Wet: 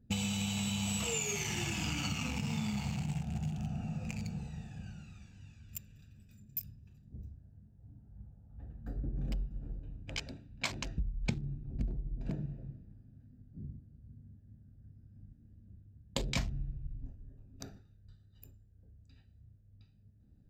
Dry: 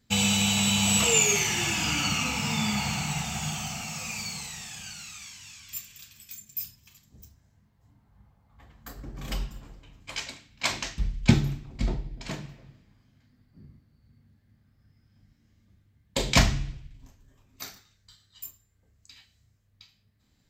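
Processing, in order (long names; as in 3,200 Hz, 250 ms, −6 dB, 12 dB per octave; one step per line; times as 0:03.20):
adaptive Wiener filter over 41 samples
low-shelf EQ 230 Hz +7.5 dB
downward compressor 6 to 1, threshold −34 dBFS, peak gain reduction 25 dB
level +1 dB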